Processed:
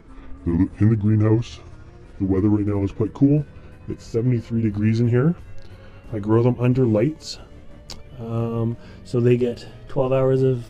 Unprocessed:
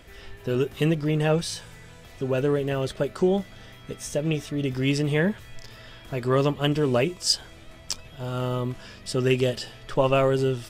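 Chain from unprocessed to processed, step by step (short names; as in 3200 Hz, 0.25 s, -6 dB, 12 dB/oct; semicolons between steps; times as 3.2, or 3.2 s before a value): gliding pitch shift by -7 st ending unshifted; tilt shelf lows +7.5 dB, about 940 Hz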